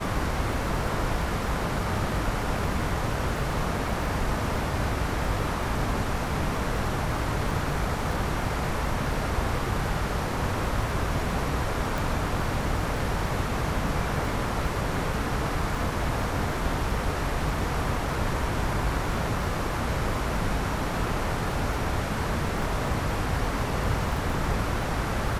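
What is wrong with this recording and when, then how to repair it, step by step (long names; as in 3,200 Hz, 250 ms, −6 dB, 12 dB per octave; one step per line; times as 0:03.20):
surface crackle 29 per second −34 dBFS
0:11.98: click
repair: click removal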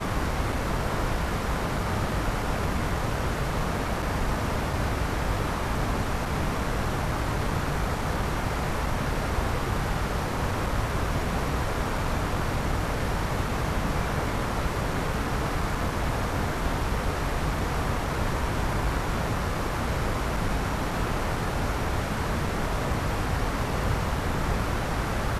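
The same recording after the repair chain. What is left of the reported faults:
none of them is left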